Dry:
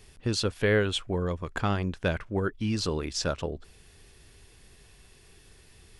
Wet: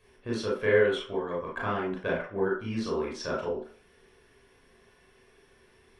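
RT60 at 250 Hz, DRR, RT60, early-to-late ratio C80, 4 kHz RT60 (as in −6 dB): 0.40 s, −4.5 dB, 0.45 s, 9.0 dB, 0.45 s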